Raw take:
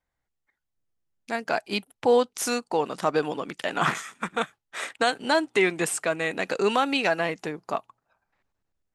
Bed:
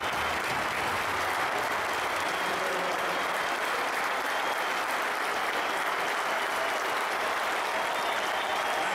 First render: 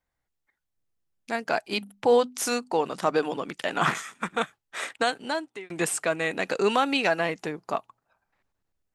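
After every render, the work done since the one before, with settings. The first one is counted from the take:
0:01.70–0:03.37: mains-hum notches 50/100/150/200/250 Hz
0:04.91–0:05.70: fade out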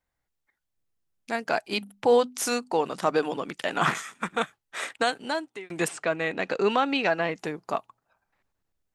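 0:05.88–0:07.35: high-frequency loss of the air 110 metres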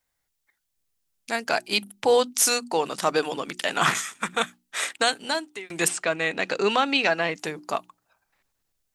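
high-shelf EQ 2,600 Hz +11 dB
mains-hum notches 60/120/180/240/300/360 Hz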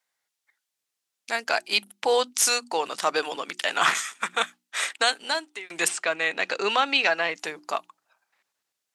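meter weighting curve A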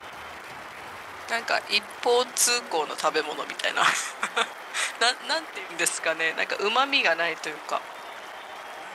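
mix in bed −10.5 dB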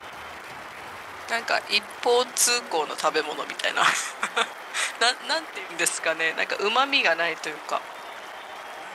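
level +1 dB

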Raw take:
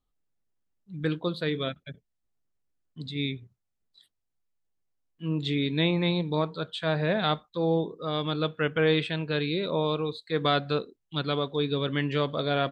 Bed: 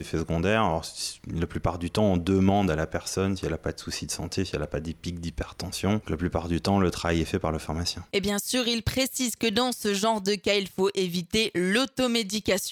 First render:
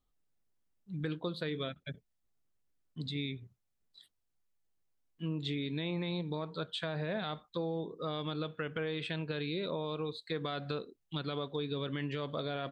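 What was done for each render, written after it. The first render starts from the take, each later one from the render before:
brickwall limiter −18.5 dBFS, peak gain reduction 8 dB
downward compressor 3 to 1, threshold −35 dBFS, peak gain reduction 9 dB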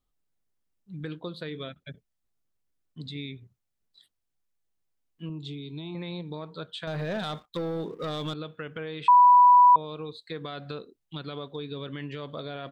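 0:05.29–0:05.95: phaser with its sweep stopped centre 350 Hz, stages 8
0:06.87–0:08.34: leveller curve on the samples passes 2
0:09.08–0:09.76: beep over 985 Hz −12 dBFS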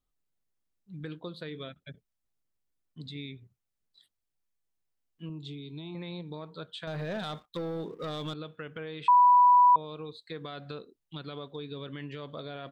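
level −3.5 dB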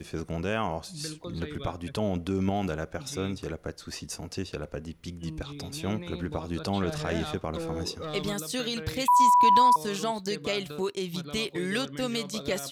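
mix in bed −6 dB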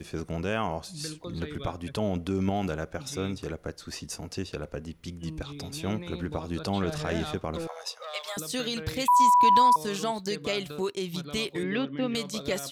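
0:07.67–0:08.37: elliptic high-pass filter 550 Hz
0:11.63–0:12.15: loudspeaker in its box 140–3,100 Hz, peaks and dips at 140 Hz +3 dB, 280 Hz +6 dB, 1,500 Hz −5 dB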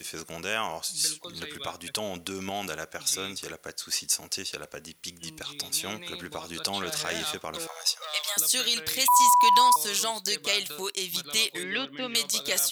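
spectral tilt +4.5 dB per octave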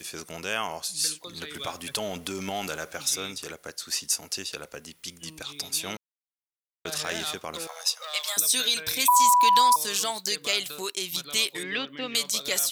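0:01.54–0:03.16: mu-law and A-law mismatch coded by mu
0:05.97–0:06.85: silence
0:08.37–0:09.10: EQ curve with evenly spaced ripples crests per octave 1.6, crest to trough 8 dB

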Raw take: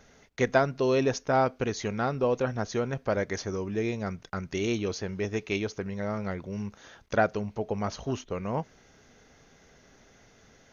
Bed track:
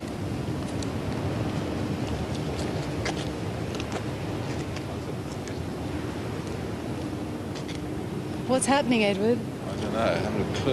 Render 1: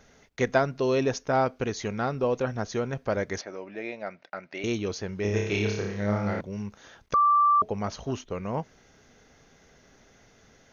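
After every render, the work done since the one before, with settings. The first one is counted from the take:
0:03.41–0:04.64: loudspeaker in its box 400–4,100 Hz, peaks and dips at 420 Hz −8 dB, 610 Hz +7 dB, 1,100 Hz −6 dB, 2,200 Hz +3 dB, 3,300 Hz −7 dB
0:05.22–0:06.41: flutter between parallel walls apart 5 metres, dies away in 0.8 s
0:07.14–0:07.62: beep over 1,170 Hz −17 dBFS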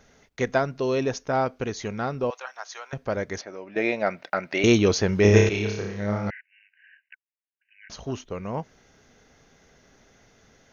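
0:02.30–0:02.93: high-pass filter 810 Hz 24 dB per octave
0:03.76–0:05.49: clip gain +11 dB
0:06.30–0:07.90: linear-phase brick-wall band-pass 1,500–3,000 Hz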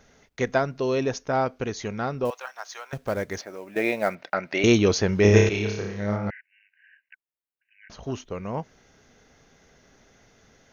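0:02.25–0:04.15: log-companded quantiser 6 bits
0:06.16–0:08.03: parametric band 6,200 Hz −8.5 dB 2 octaves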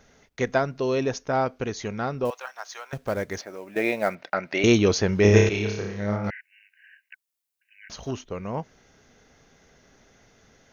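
0:06.24–0:08.11: high-shelf EQ 2,800 Hz +11.5 dB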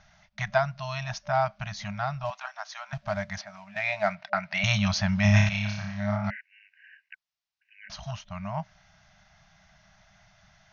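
brick-wall band-stop 210–590 Hz
Butterworth low-pass 5,800 Hz 36 dB per octave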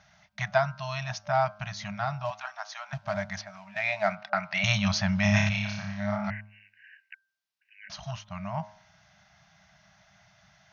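high-pass filter 82 Hz
hum removal 104.8 Hz, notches 15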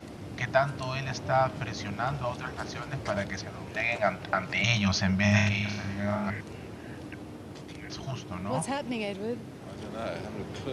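mix in bed track −10 dB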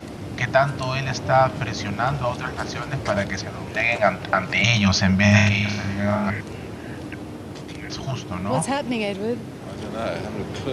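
level +8 dB
brickwall limiter −3 dBFS, peak gain reduction 2.5 dB

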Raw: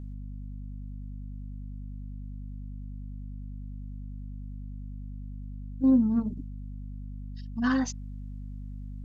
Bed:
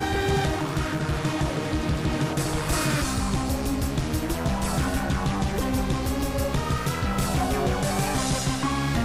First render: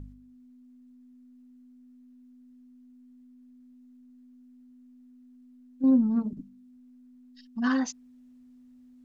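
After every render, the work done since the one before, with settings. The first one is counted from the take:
hum removal 50 Hz, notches 4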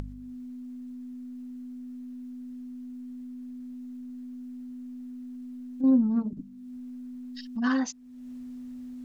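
upward compression, threshold −29 dBFS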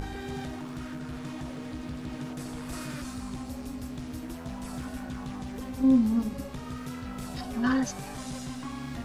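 mix in bed −14.5 dB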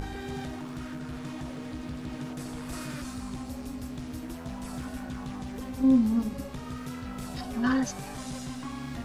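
no processing that can be heard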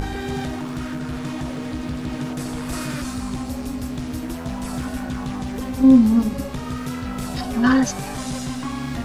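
level +9.5 dB

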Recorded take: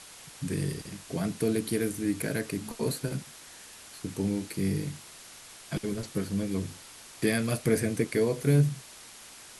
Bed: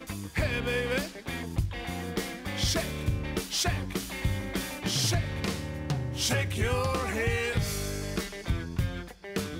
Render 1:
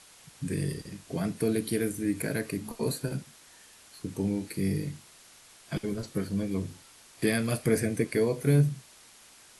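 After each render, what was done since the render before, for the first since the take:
noise reduction from a noise print 6 dB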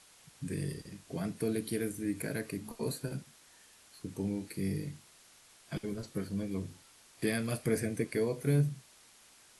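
level −5.5 dB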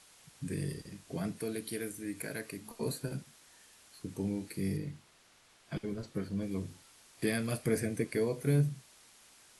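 0:01.39–0:02.76: low-shelf EQ 410 Hz −8 dB
0:04.76–0:06.41: high-shelf EQ 5,000 Hz → 7,500 Hz −10 dB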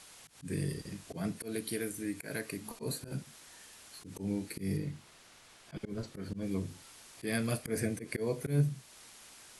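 volume swells 135 ms
in parallel at −1 dB: downward compressor, threshold −45 dBFS, peak gain reduction 19.5 dB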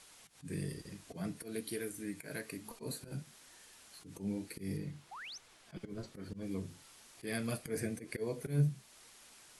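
flanger 1.1 Hz, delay 1.8 ms, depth 5.2 ms, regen +69%
0:05.11–0:05.38: sound drawn into the spectrogram rise 700–6,600 Hz −47 dBFS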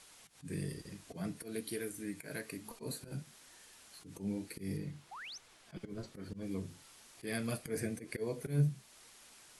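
no processing that can be heard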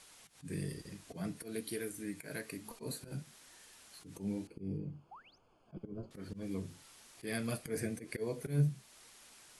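0:04.47–0:06.11: moving average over 23 samples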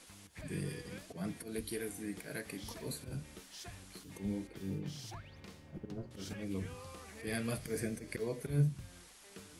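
mix in bed −21.5 dB

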